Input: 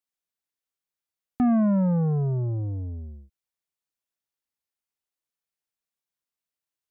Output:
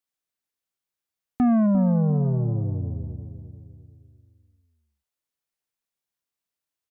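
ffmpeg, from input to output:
-filter_complex "[0:a]asplit=3[a][b][c];[a]afade=t=out:st=1.66:d=0.02[d];[b]lowpass=1.2k,afade=t=in:st=1.66:d=0.02,afade=t=out:st=2.23:d=0.02[e];[c]afade=t=in:st=2.23:d=0.02[f];[d][e][f]amix=inputs=3:normalize=0,asplit=2[g][h];[h]adelay=349,lowpass=f=860:p=1,volume=-9dB,asplit=2[i][j];[j]adelay=349,lowpass=f=860:p=1,volume=0.47,asplit=2[k][l];[l]adelay=349,lowpass=f=860:p=1,volume=0.47,asplit=2[m][n];[n]adelay=349,lowpass=f=860:p=1,volume=0.47,asplit=2[o][p];[p]adelay=349,lowpass=f=860:p=1,volume=0.47[q];[i][k][m][o][q]amix=inputs=5:normalize=0[r];[g][r]amix=inputs=2:normalize=0,volume=1.5dB"

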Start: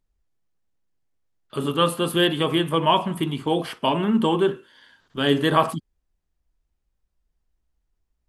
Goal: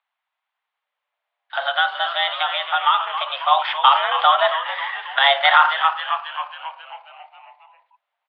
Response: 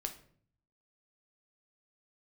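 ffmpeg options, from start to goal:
-filter_complex "[0:a]asettb=1/sr,asplit=3[a][b][c];[a]atrim=end=1.714[d];[b]atrim=start=1.71:end=3.3,asetpts=PTS-STARTPTS,afade=t=in:d=0.004:c=qsin,afade=t=out:st=1.586:d=0.004:c=qsin,acompressor=threshold=-24dB:ratio=6[e];[c]atrim=start=3.296[f];[d][e]acrossfade=d=0.004:c1=hsin:c2=qsin[g];[g][f]acrossfade=d=0.004:c1=qsin:c2=hsin,asettb=1/sr,asplit=3[h][i][j];[h]atrim=end=4.534[k];[i]atrim=start=4.53:end=5.19,asetpts=PTS-STARTPTS,afade=t=in:d=0.004:c=qsin,afade=t=out:st=0.656:d=0.004:c=qsin,equalizer=f=1.5k:t=o:w=2.2:g=15[l];[j]atrim=start=5.186[m];[k][l]acrossfade=d=0.004:c1=hsin:c2=qsin[n];[n][m]acrossfade=d=0.004:c1=qsin:c2=hsin,asplit=9[o][p][q][r][s][t][u][v][w];[p]adelay=271,afreqshift=-110,volume=-9.5dB[x];[q]adelay=542,afreqshift=-220,volume=-13.7dB[y];[r]adelay=813,afreqshift=-330,volume=-17.8dB[z];[s]adelay=1084,afreqshift=-440,volume=-22dB[aa];[t]adelay=1355,afreqshift=-550,volume=-26.1dB[ab];[u]adelay=1626,afreqshift=-660,volume=-30.3dB[ac];[v]adelay=1897,afreqshift=-770,volume=-34.4dB[ad];[w]adelay=2168,afreqshift=-880,volume=-38.6dB[ae];[o][x][y][z][aa][ab][ac][ad][ae]amix=inputs=9:normalize=0,highpass=f=530:t=q:w=0.5412,highpass=f=530:t=q:w=1.307,lowpass=f=3.3k:t=q:w=0.5176,lowpass=f=3.3k:t=q:w=0.7071,lowpass=f=3.3k:t=q:w=1.932,afreqshift=270,alimiter=level_in=12dB:limit=-1dB:release=50:level=0:latency=1,volume=-1dB"

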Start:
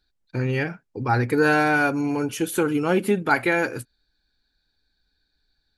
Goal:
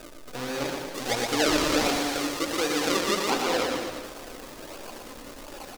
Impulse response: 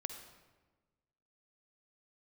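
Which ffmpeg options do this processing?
-filter_complex "[0:a]aeval=exprs='val(0)+0.5*0.0447*sgn(val(0))':c=same[a];[1:a]atrim=start_sample=2205,atrim=end_sample=3969[b];[a][b]afir=irnorm=-1:irlink=0,acrusher=samples=41:mix=1:aa=0.000001:lfo=1:lforange=41:lforate=1.4,acrossover=split=5900[c][d];[d]acompressor=threshold=-44dB:ratio=4:attack=1:release=60[e];[c][e]amix=inputs=2:normalize=0,asettb=1/sr,asplit=3[f][g][h];[f]atrim=end=0.854[i];[g]atrim=start=0.85:end=3.3,asetpts=PTS-STARTPTS,afade=t=in:d=0.004:c=qsin,afade=t=out:st=2.446:d=0.004:c=qsin,equalizer=f=9.9k:t=o:w=2.6:g=5.5[j];[h]atrim=start=3.296[k];[i][j]acrossfade=d=0.004:c1=hsin:c2=qsin[l];[l][k]acrossfade=d=0.004:c1=qsin:c2=hsin,flanger=delay=3.1:depth=1.1:regen=46:speed=1.3:shape=triangular,bass=f=250:g=-13,treble=f=4k:g=7,aecho=1:1:120|228|325.2|412.7|491.4:0.631|0.398|0.251|0.158|0.1"

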